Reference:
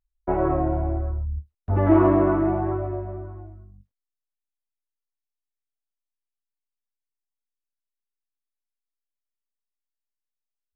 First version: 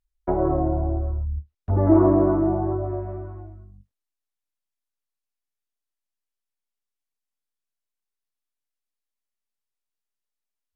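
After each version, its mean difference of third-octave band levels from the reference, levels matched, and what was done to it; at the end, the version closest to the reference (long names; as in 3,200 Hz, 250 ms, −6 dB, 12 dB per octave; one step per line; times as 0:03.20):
1.5 dB: treble cut that deepens with the level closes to 890 Hz, closed at −22 dBFS
level +1 dB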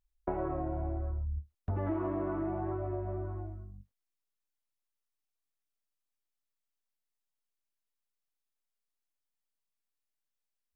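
3.0 dB: downward compressor 6 to 1, threshold −32 dBFS, peak gain reduction 18.5 dB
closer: first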